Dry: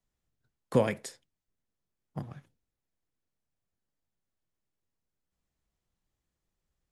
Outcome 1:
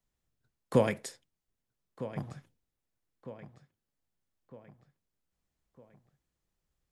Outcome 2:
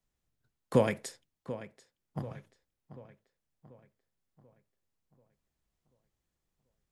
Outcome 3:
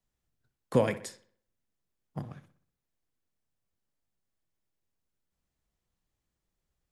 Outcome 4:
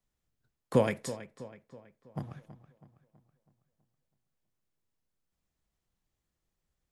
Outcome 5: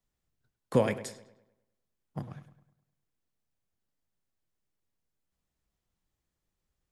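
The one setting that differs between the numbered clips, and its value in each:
feedback echo with a low-pass in the loop, delay time: 1,256, 737, 62, 325, 102 milliseconds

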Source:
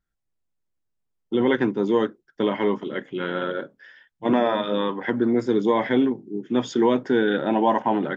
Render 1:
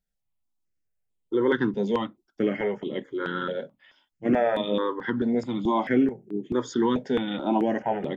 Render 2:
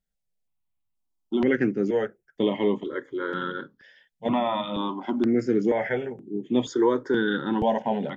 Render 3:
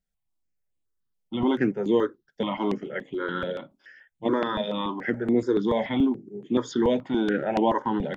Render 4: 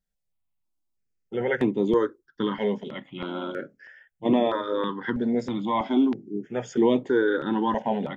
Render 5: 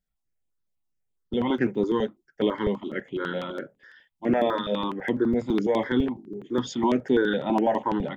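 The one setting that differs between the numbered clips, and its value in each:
step-sequenced phaser, speed: 4.6, 2.1, 7, 3.1, 12 Hertz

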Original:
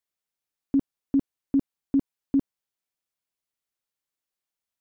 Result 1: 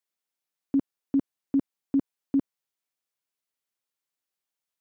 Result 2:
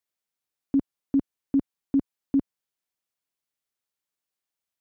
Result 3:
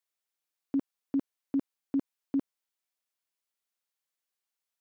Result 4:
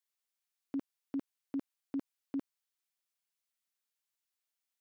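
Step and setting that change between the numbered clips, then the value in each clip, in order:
high-pass filter, corner frequency: 180, 51, 520, 1,400 Hertz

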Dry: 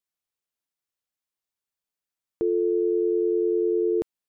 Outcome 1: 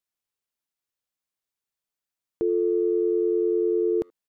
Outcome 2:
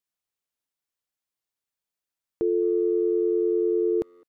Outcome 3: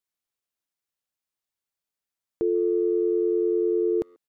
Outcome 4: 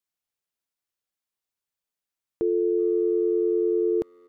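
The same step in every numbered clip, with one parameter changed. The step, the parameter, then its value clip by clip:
far-end echo of a speakerphone, delay time: 80, 210, 140, 380 milliseconds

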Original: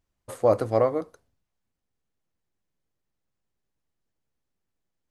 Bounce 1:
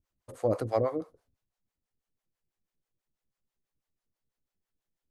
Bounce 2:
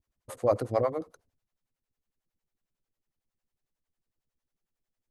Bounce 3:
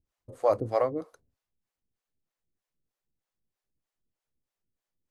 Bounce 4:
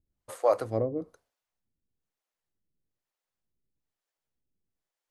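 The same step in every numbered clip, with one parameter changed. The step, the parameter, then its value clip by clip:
two-band tremolo in antiphase, speed: 6.1, 11, 3.2, 1.1 Hertz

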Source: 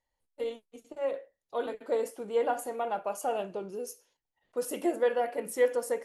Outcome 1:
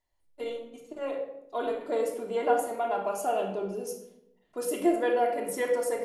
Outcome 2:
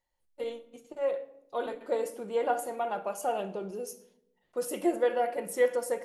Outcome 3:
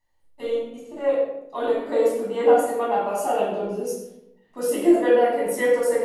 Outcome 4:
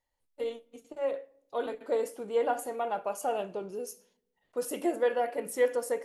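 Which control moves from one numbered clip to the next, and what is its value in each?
rectangular room, microphone at: 3.1, 0.93, 10, 0.3 metres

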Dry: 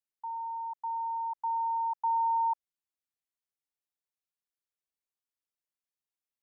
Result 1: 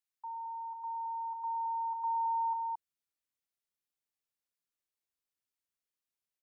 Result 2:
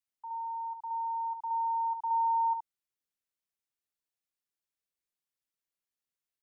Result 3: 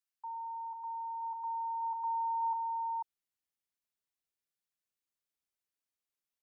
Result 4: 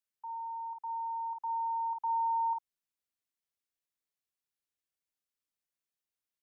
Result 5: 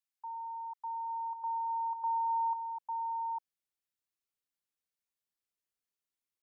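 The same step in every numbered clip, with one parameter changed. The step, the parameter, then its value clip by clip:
multiband delay without the direct sound, delay time: 220, 70, 490, 50, 850 milliseconds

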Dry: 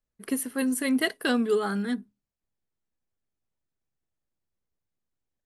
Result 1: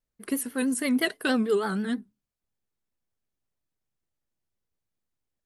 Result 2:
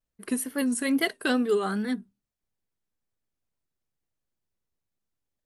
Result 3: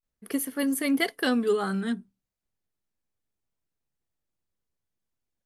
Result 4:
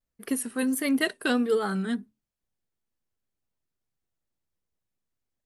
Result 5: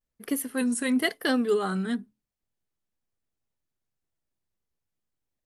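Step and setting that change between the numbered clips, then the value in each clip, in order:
pitch vibrato, speed: 6.2, 2.3, 0.34, 1.5, 0.99 Hertz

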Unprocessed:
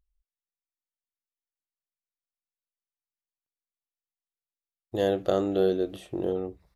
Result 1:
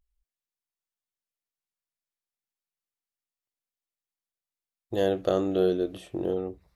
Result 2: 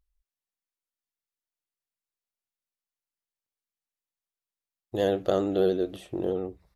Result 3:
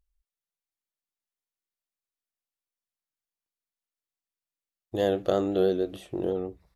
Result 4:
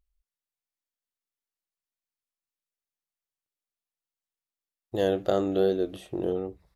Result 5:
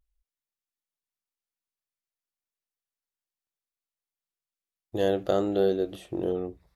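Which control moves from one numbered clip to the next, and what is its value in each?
pitch vibrato, speed: 0.31, 13, 6.2, 2.5, 0.58 Hertz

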